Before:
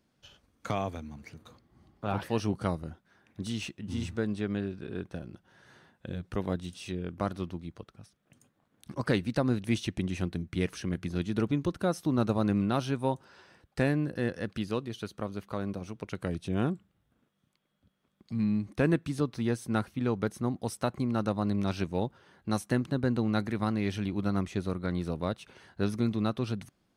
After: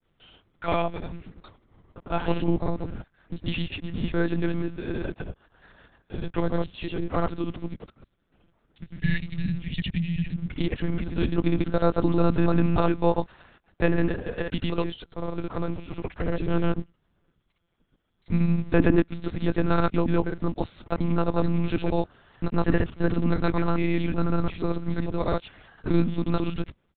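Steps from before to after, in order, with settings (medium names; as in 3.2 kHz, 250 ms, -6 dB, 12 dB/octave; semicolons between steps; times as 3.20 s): spectral selection erased 8.87–10.42 s, 230–1600 Hz; granulator, pitch spread up and down by 0 st; in parallel at -8 dB: word length cut 8-bit, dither none; on the sum: monotone LPC vocoder at 8 kHz 170 Hz; trim +5 dB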